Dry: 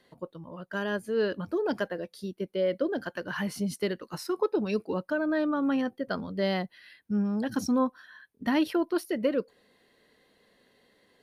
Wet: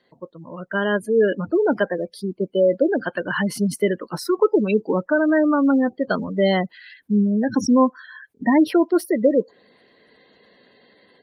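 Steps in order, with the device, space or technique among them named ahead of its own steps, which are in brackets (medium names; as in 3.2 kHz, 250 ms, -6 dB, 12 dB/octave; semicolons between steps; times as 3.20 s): noise-suppressed video call (high-pass 120 Hz 6 dB/octave; spectral gate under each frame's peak -20 dB strong; level rider gain up to 9 dB; trim +1.5 dB; Opus 32 kbps 48 kHz)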